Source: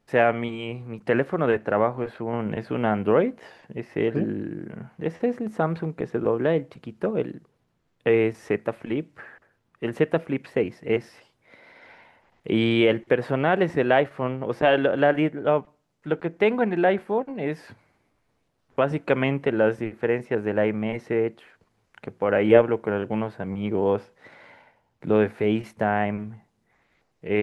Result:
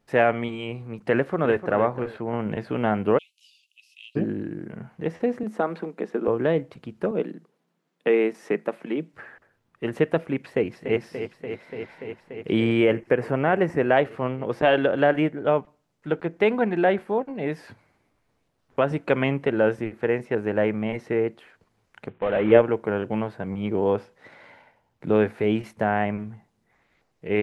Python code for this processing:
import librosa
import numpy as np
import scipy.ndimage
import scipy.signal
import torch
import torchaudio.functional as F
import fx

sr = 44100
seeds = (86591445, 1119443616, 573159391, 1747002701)

y = fx.echo_throw(x, sr, start_s=1.14, length_s=0.58, ms=300, feedback_pct=25, wet_db=-11.0)
y = fx.steep_highpass(y, sr, hz=2600.0, slope=96, at=(3.17, 4.15), fade=0.02)
y = fx.ellip_highpass(y, sr, hz=190.0, order=4, stop_db=40, at=(5.43, 6.28))
y = fx.ellip_highpass(y, sr, hz=160.0, order=4, stop_db=40, at=(7.11, 9.14))
y = fx.echo_throw(y, sr, start_s=10.43, length_s=0.55, ms=290, feedback_pct=85, wet_db=-9.0)
y = fx.peak_eq(y, sr, hz=3700.0, db=-12.5, octaves=0.52, at=(12.6, 13.97))
y = fx.cvsd(y, sr, bps=16000, at=(22.09, 22.52))